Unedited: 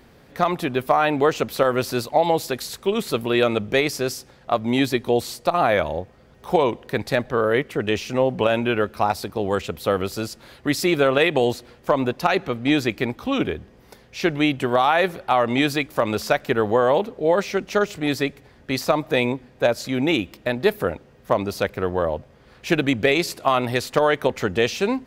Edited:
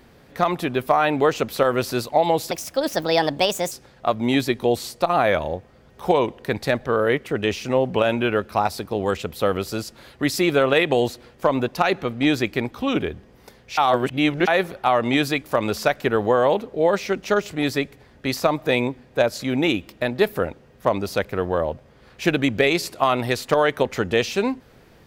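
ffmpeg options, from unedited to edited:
-filter_complex "[0:a]asplit=5[a][b][c][d][e];[a]atrim=end=2.514[f];[b]atrim=start=2.51:end=4.16,asetpts=PTS-STARTPTS,asetrate=60417,aresample=44100,atrim=end_sample=53113,asetpts=PTS-STARTPTS[g];[c]atrim=start=4.156:end=14.222[h];[d]atrim=start=14.218:end=14.922,asetpts=PTS-STARTPTS,areverse[i];[e]atrim=start=14.918[j];[f][g]acrossfade=d=0.004:c1=hsin:c2=hsin[k];[k][h]acrossfade=d=0.004:c1=hsin:c2=hsin[l];[l][i]acrossfade=d=0.004:c1=hsin:c2=hsin[m];[m][j]acrossfade=d=0.004:c1=hsin:c2=hsin"

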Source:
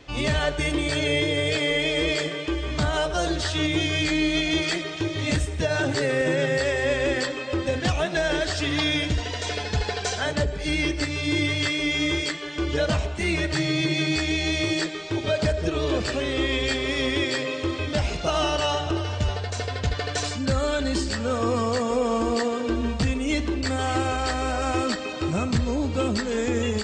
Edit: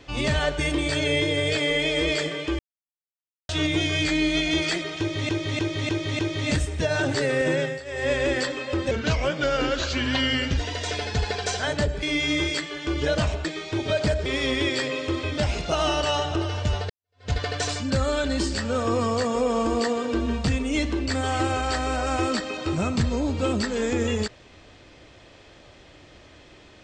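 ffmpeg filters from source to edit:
-filter_complex "[0:a]asplit=15[a][b][c][d][e][f][g][h][i][j][k][l][m][n][o];[a]atrim=end=2.59,asetpts=PTS-STARTPTS,afade=t=out:st=2.586:d=0.004:c=hsin[p];[b]atrim=start=2.59:end=3.49,asetpts=PTS-STARTPTS,volume=0[q];[c]atrim=start=3.49:end=5.292,asetpts=PTS-STARTPTS,afade=t=in:d=0.004:c=hsin[r];[d]atrim=start=4.988:end=5.292[s];[e]atrim=start=4.988:end=5.292[t];[f]atrim=start=4.988:end=5.292[u];[g]atrim=start=4.988:end=6.61,asetpts=PTS-STARTPTS,afade=t=out:st=1.372:d=0.25:silence=0.158489[v];[h]atrim=start=6.61:end=6.65,asetpts=PTS-STARTPTS,volume=-16dB[w];[i]atrim=start=6.65:end=7.714,asetpts=PTS-STARTPTS,afade=t=in:d=0.25:silence=0.158489[x];[j]atrim=start=7.71:end=9.16,asetpts=PTS-STARTPTS,asetrate=38367,aresample=44100[y];[k]atrim=start=9.156:end=10.612[z];[l]atrim=start=11.738:end=13.162[aa];[m]atrim=start=14.828:end=15.642[ab];[n]atrim=start=16.808:end=19.45,asetpts=PTS-STARTPTS,afade=t=out:st=2.638:d=0.004:c=hsin[ac];[o]atrim=start=19.45,asetpts=PTS-STARTPTS,afade=t=in:d=0.41:c=exp[ad];[p][q][r]concat=n=3:v=0:a=1[ae];[ae][s]acrossfade=d=0.004:c1=hsin:c2=hsin[af];[af][t]acrossfade=d=0.004:c1=hsin:c2=hsin[ag];[ag][u]acrossfade=d=0.004:c1=hsin:c2=hsin[ah];[v][w][x]concat=n=3:v=0:a=1[ai];[ah][ai]acrossfade=d=0.004:c1=hsin:c2=hsin[aj];[aj][y]acrossfade=d=0.004:c1=hsin:c2=hsin[ak];[ak][z]acrossfade=d=0.004:c1=hsin:c2=hsin[al];[al][aa]acrossfade=d=0.004:c1=hsin:c2=hsin[am];[am][ab]acrossfade=d=0.004:c1=hsin:c2=hsin[an];[ac][ad]concat=n=2:v=0:a=1[ao];[an][ao]acrossfade=d=0.004:c1=hsin:c2=hsin"

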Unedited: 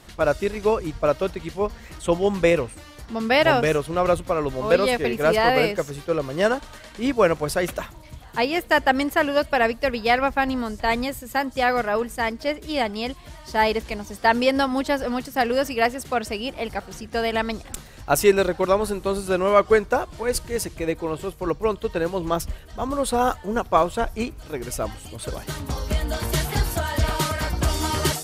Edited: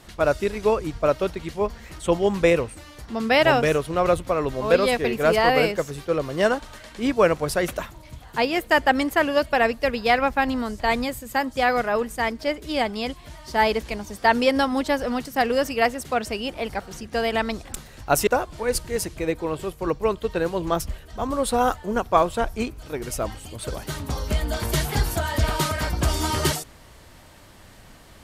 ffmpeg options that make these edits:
-filter_complex "[0:a]asplit=2[a][b];[a]atrim=end=18.272[c];[b]atrim=start=19.868[d];[c][d]acrossfade=d=0.004:c1=hsin:c2=hsin"

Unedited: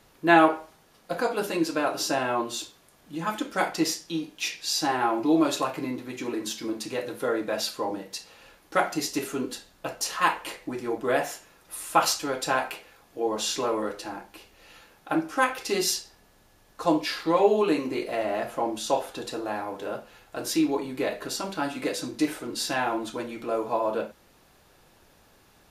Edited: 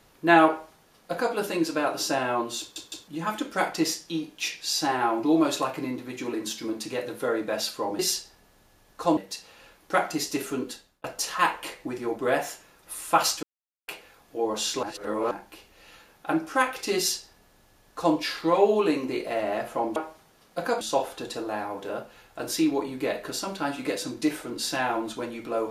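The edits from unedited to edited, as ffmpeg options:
-filter_complex "[0:a]asplit=13[a][b][c][d][e][f][g][h][i][j][k][l][m];[a]atrim=end=2.762[n];[b]atrim=start=2.598:end=2.762[o];[c]atrim=start=2.598:end=2.762[p];[d]atrim=start=3.078:end=7.992[q];[e]atrim=start=15.788:end=16.972[r];[f]atrim=start=7.988:end=9.86,asetpts=PTS-STARTPTS,afade=t=out:st=1.342:d=0.53:c=qsin[s];[g]atrim=start=9.86:end=12.25,asetpts=PTS-STARTPTS,afade=t=in:d=0.004:c=hsin,afade=t=out:st=2.386:d=0.004:c=hsin[t];[h]atrim=start=12.25:end=12.7,asetpts=PTS-STARTPTS,volume=0[u];[i]atrim=start=12.7:end=13.652,asetpts=PTS-STARTPTS,afade=t=in:d=0.004:c=hsin[v];[j]atrim=start=13.648:end=14.132,asetpts=PTS-STARTPTS,areverse[w];[k]atrim=start=14.128:end=18.782[x];[l]atrim=start=0.488:end=1.342[y];[m]atrim=start=18.778[z];[n][o]acrossfade=d=0.004:c1=hsin:c2=hsin[aa];[aa][p]acrossfade=d=0.004:c1=hsin:c2=hsin[ab];[ab][q]acrossfade=d=0.004:c1=hsin:c2=hsin[ac];[ac][r]acrossfade=d=0.004:c1=hsin:c2=hsin[ad];[s][t][u][v]concat=n=4:v=0:a=1[ae];[ad][ae]acrossfade=d=0.004:c1=hsin:c2=hsin[af];[af][w]acrossfade=d=0.004:c1=hsin:c2=hsin[ag];[ag][x]acrossfade=d=0.004:c1=hsin:c2=hsin[ah];[ah][y]acrossfade=d=0.004:c1=hsin:c2=hsin[ai];[ai][z]acrossfade=d=0.004:c1=hsin:c2=hsin"

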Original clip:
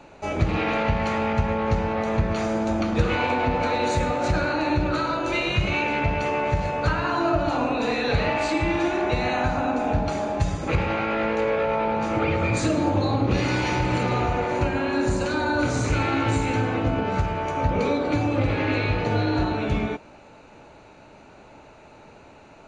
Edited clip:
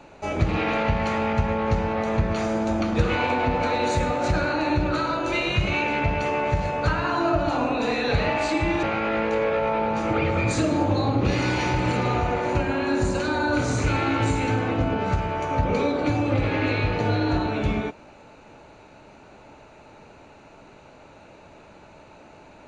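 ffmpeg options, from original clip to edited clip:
-filter_complex "[0:a]asplit=2[a][b];[a]atrim=end=8.832[c];[b]atrim=start=10.888[d];[c][d]acrossfade=d=0.004:c1=hsin:c2=hsin"

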